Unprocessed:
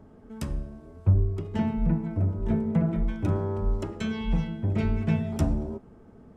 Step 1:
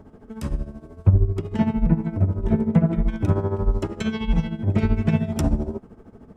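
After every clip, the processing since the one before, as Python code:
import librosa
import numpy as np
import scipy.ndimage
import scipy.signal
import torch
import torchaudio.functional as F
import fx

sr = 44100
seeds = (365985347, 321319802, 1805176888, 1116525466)

y = x * (1.0 - 0.7 / 2.0 + 0.7 / 2.0 * np.cos(2.0 * np.pi * 13.0 * (np.arange(len(x)) / sr)))
y = y * 10.0 ** (8.0 / 20.0)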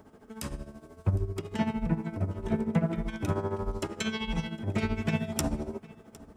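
y = fx.tilt_eq(x, sr, slope=2.5)
y = y + 10.0 ** (-22.5 / 20.0) * np.pad(y, (int(758 * sr / 1000.0), 0))[:len(y)]
y = y * 10.0 ** (-3.0 / 20.0)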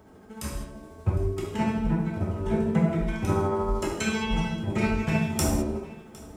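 y = fx.rider(x, sr, range_db=10, speed_s=2.0)
y = fx.rev_gated(y, sr, seeds[0], gate_ms=240, shape='falling', drr_db=-4.0)
y = fx.dynamic_eq(y, sr, hz=3400.0, q=2.3, threshold_db=-49.0, ratio=4.0, max_db=-5)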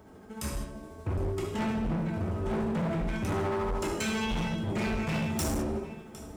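y = np.clip(x, -10.0 ** (-27.5 / 20.0), 10.0 ** (-27.5 / 20.0))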